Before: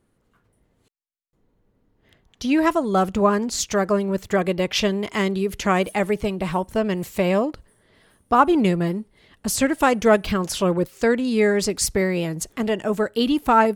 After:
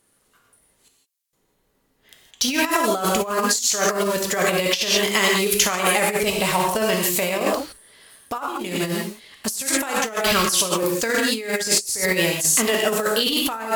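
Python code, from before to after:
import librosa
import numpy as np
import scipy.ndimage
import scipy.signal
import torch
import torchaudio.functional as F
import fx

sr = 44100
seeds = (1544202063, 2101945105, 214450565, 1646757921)

p1 = fx.quant_dither(x, sr, seeds[0], bits=6, dither='none')
p2 = x + F.gain(torch.from_numpy(p1), -8.5).numpy()
p3 = fx.peak_eq(p2, sr, hz=13000.0, db=14.0, octaves=2.6)
p4 = fx.rev_gated(p3, sr, seeds[1], gate_ms=190, shape='flat', drr_db=1.0)
p5 = fx.over_compress(p4, sr, threshold_db=-16.0, ratio=-0.5)
p6 = fx.low_shelf(p5, sr, hz=300.0, db=-11.5)
y = F.gain(torch.from_numpy(p6), -1.5).numpy()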